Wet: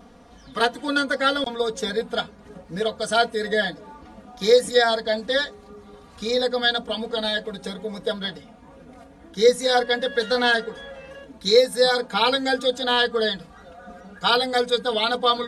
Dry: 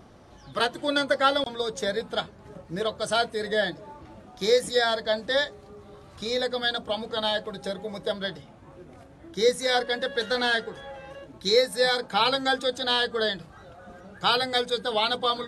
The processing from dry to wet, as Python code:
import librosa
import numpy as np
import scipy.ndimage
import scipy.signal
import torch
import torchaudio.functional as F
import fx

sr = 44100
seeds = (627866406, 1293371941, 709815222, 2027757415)

y = x + 0.99 * np.pad(x, (int(4.2 * sr / 1000.0), 0))[:len(x)]